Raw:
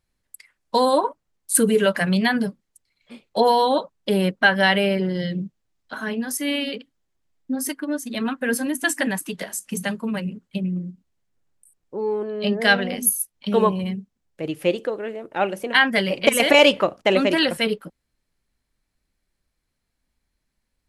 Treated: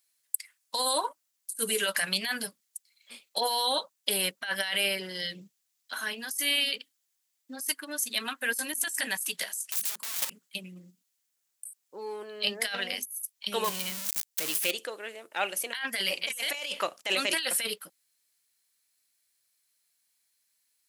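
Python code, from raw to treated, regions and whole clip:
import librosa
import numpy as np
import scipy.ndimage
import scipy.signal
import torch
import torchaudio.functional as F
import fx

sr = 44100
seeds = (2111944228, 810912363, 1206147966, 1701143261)

y = fx.chain(x, sr, fx.overflow_wrap(gain_db=26.5),
    fx.level_steps(step_db=10), at=(9.66, 10.31))
y = fx.chain(y, sr, fx.zero_step(step_db=-27.0),
    fx.peak_eq(hz=800.0, db=-2.5, octaves=2.5), at=(13.64, 14.71))
y = np.diff(y, prepend=0.0)
y = fx.over_compress(y, sr, threshold_db=-36.0, ratio=-1.0)
y = F.gain(torch.from_numpy(y), 5.0).numpy()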